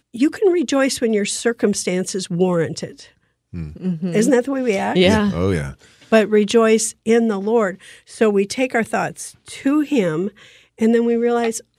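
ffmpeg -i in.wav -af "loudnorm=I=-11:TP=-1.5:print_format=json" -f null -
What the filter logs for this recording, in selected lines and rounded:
"input_i" : "-18.5",
"input_tp" : "-1.7",
"input_lra" : "3.6",
"input_thresh" : "-29.2",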